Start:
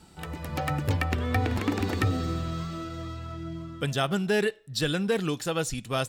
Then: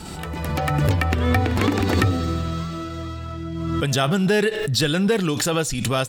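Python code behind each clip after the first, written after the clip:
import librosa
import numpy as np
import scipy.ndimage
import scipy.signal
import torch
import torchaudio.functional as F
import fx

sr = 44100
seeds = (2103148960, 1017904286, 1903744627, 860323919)

y = fx.pre_swell(x, sr, db_per_s=29.0)
y = F.gain(torch.from_numpy(y), 5.5).numpy()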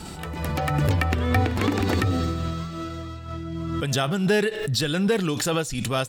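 y = fx.am_noise(x, sr, seeds[0], hz=5.7, depth_pct=55)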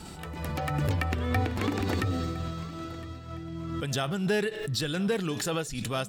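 y = fx.echo_feedback(x, sr, ms=1011, feedback_pct=37, wet_db=-19.5)
y = F.gain(torch.from_numpy(y), -6.0).numpy()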